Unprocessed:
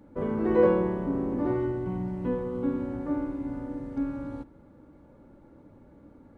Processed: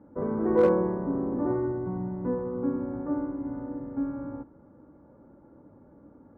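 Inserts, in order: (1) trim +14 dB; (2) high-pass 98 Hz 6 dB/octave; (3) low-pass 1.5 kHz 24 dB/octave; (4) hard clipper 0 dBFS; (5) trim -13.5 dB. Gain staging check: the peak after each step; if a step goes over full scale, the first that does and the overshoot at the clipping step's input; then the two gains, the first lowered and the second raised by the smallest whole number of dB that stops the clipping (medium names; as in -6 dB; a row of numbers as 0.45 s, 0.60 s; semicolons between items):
+4.0 dBFS, +3.5 dBFS, +3.5 dBFS, 0.0 dBFS, -13.5 dBFS; step 1, 3.5 dB; step 1 +10 dB, step 5 -9.5 dB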